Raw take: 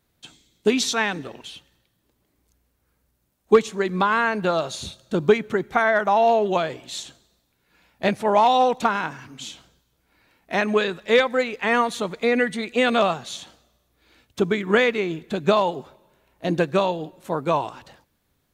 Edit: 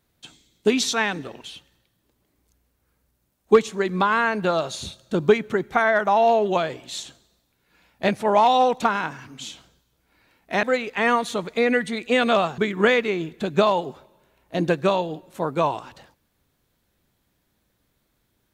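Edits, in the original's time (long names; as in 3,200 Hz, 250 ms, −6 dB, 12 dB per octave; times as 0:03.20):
0:10.63–0:11.29: remove
0:13.24–0:14.48: remove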